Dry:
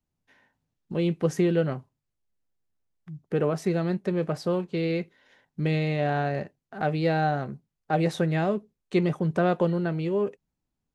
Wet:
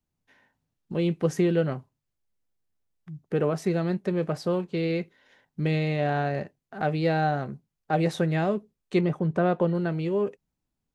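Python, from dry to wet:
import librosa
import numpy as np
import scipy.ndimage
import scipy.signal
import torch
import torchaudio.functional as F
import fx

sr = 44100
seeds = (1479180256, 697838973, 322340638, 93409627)

y = fx.high_shelf(x, sr, hz=3500.0, db=-10.5, at=(9.01, 9.75))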